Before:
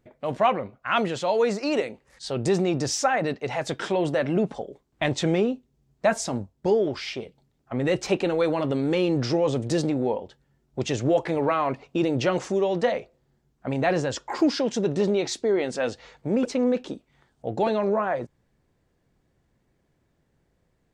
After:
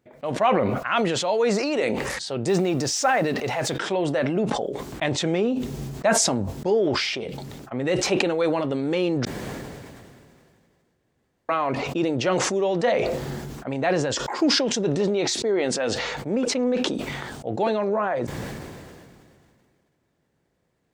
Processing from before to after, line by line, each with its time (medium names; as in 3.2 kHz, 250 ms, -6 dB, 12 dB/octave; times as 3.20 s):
2.48–3.77 s: companding laws mixed up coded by mu
9.25–11.49 s: room tone
whole clip: high-pass 150 Hz 6 dB/octave; decay stretcher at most 26 dB/s